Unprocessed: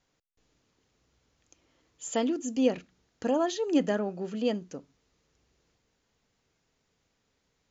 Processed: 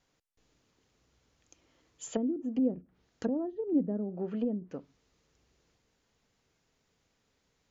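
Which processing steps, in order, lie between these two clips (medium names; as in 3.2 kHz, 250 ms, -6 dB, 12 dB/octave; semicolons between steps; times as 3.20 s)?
low-pass that closes with the level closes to 310 Hz, closed at -26 dBFS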